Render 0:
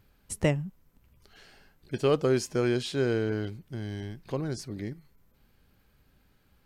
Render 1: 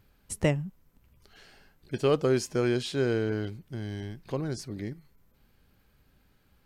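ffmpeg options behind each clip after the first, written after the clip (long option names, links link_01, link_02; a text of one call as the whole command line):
ffmpeg -i in.wav -af anull out.wav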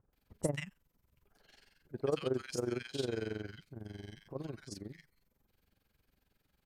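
ffmpeg -i in.wav -filter_complex "[0:a]lowshelf=frequency=340:gain=-4.5,tremolo=f=22:d=0.824,acrossover=split=1300[link_01][link_02];[link_02]adelay=130[link_03];[link_01][link_03]amix=inputs=2:normalize=0,volume=-4dB" out.wav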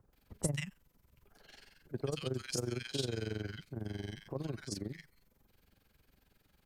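ffmpeg -i in.wav -filter_complex "[0:a]acrossover=split=160|3000[link_01][link_02][link_03];[link_02]acompressor=threshold=-43dB:ratio=6[link_04];[link_01][link_04][link_03]amix=inputs=3:normalize=0,volume=6dB" out.wav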